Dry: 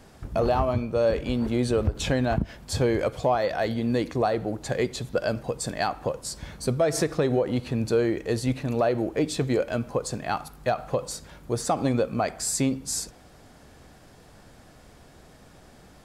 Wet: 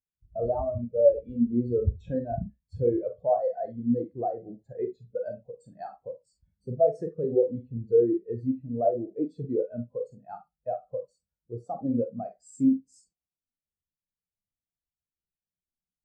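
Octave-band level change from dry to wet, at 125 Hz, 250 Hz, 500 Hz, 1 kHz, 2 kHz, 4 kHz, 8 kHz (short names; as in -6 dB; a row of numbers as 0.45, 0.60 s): -7.0 dB, -2.0 dB, -1.5 dB, -6.5 dB, under -25 dB, under -35 dB, under -25 dB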